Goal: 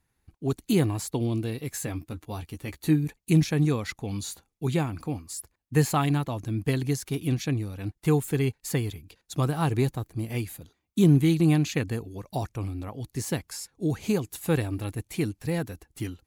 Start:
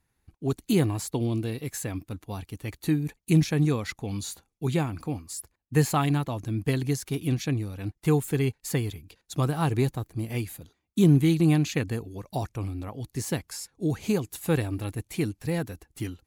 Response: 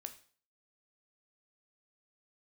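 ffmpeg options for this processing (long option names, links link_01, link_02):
-filter_complex "[0:a]asettb=1/sr,asplit=3[link_01][link_02][link_03];[link_01]atrim=end=1.694[link_04];[link_02]atrim=start=1.69:end=3.05,asetpts=PTS-STARTPTS,afade=type=in:duration=0.004:curve=qsin,afade=type=out:start_time=1.356:duration=0.004:curve=qsin,asplit=2[link_05][link_06];[link_06]adelay=13,volume=-7.5dB[link_07];[link_05][link_07]amix=inputs=2:normalize=0,atrim=end_sample=59976[link_08];[link_03]atrim=start=3.046[link_09];[link_04][link_08]acrossfade=duration=0.004:curve1=hsin:curve2=qsin[link_10];[link_10][link_09]acrossfade=duration=0.004:curve1=qsin:curve2=hsin"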